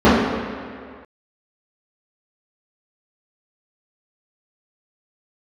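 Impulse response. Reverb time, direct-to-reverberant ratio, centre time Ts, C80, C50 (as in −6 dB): 2.0 s, −13.5 dB, 111 ms, 1.5 dB, −1.0 dB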